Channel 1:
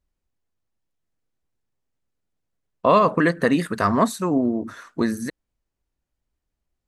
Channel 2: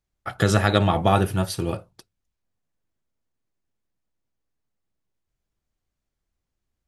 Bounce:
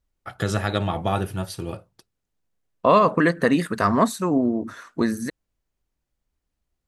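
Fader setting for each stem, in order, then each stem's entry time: 0.0, -5.0 dB; 0.00, 0.00 s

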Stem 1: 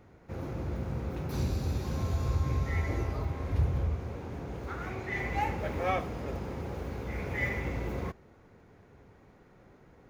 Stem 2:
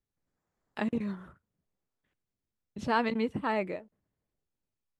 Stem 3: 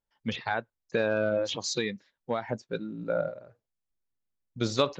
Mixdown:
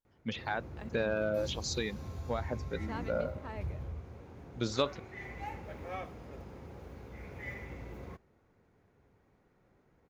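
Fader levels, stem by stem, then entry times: -11.0, -15.0, -5.0 dB; 0.05, 0.00, 0.00 s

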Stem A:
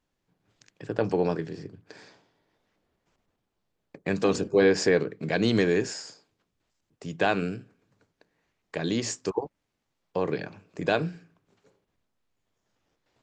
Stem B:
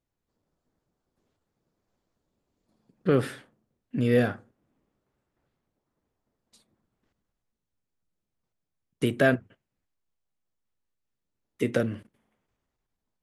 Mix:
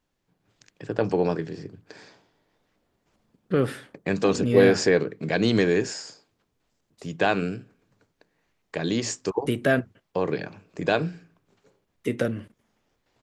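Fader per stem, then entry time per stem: +2.0, 0.0 dB; 0.00, 0.45 s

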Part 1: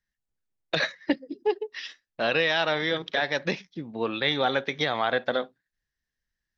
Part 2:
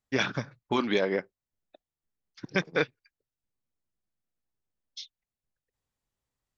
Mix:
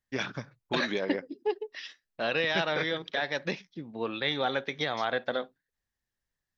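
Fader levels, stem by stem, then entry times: -4.5, -5.5 dB; 0.00, 0.00 s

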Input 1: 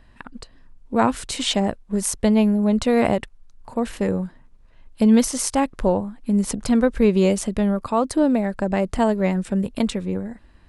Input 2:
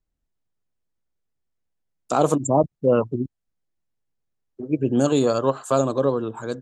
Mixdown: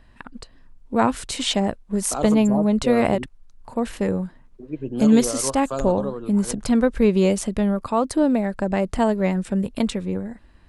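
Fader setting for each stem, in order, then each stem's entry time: -0.5, -8.0 dB; 0.00, 0.00 s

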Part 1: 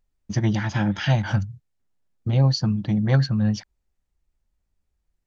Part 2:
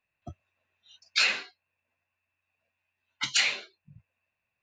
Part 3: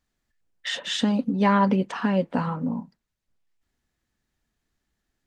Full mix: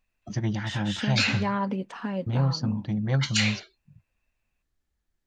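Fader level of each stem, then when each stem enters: -6.0, -1.0, -8.0 dB; 0.00, 0.00, 0.00 s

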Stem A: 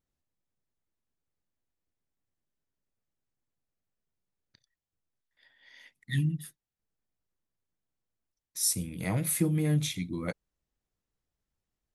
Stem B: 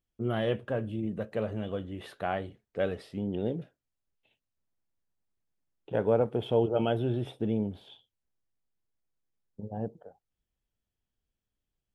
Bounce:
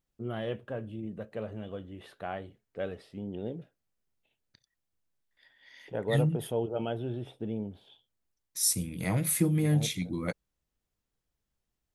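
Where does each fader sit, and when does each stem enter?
+1.0, -5.5 dB; 0.00, 0.00 s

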